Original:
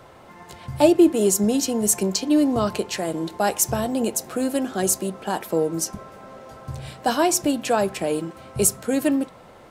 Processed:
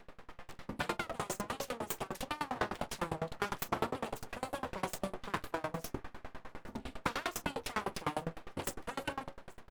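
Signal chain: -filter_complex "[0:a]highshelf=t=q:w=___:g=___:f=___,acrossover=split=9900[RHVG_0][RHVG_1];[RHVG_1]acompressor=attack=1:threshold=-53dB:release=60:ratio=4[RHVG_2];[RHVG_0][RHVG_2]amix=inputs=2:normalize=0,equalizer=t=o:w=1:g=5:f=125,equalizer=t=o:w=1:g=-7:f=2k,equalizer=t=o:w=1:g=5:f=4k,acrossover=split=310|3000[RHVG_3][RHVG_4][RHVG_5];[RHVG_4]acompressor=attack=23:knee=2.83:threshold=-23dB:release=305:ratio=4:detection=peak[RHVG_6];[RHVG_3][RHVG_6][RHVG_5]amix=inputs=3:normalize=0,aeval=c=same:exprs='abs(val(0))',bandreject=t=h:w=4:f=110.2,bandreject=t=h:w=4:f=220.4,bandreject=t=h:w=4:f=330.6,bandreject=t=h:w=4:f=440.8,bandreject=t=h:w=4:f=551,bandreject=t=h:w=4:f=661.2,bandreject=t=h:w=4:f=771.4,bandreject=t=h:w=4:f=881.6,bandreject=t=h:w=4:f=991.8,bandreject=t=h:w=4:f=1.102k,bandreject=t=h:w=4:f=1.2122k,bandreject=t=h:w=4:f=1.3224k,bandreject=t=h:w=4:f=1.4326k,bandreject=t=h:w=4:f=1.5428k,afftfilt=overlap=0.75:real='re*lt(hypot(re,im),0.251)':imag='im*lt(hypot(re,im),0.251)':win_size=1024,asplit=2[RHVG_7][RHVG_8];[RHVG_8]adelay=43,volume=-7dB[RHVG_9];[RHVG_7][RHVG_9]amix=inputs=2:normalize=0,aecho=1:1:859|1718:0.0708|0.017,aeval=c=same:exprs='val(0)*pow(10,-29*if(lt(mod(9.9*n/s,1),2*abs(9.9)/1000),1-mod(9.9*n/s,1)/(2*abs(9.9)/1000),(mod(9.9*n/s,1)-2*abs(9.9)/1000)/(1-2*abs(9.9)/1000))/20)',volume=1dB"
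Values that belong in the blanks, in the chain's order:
1.5, -9, 3.2k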